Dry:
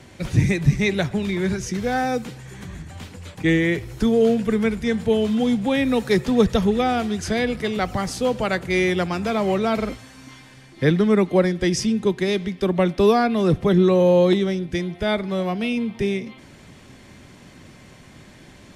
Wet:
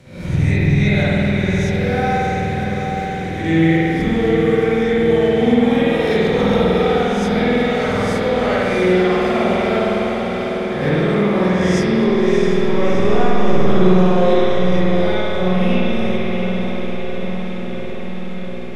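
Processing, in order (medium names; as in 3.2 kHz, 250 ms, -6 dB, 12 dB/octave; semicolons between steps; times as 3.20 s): reverse spectral sustain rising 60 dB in 0.67 s; one-sided clip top -12.5 dBFS; 12.07–13.68 s: LPC vocoder at 8 kHz pitch kept; on a send: echo that smears into a reverb 689 ms, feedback 71%, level -6 dB; on the sum: spring tank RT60 2.4 s, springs 49 ms, chirp 25 ms, DRR -9 dB; trim -8 dB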